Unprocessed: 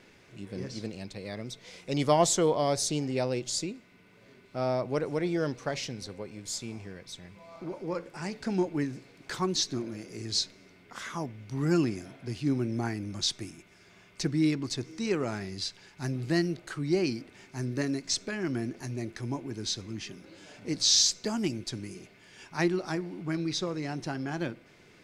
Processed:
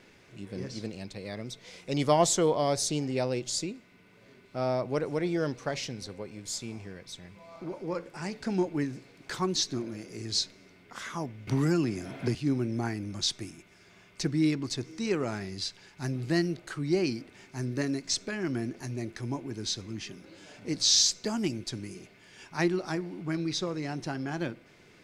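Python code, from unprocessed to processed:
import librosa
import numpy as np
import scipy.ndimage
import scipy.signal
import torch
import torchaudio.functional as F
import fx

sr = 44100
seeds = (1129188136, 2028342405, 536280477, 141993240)

y = fx.band_squash(x, sr, depth_pct=100, at=(11.47, 12.35))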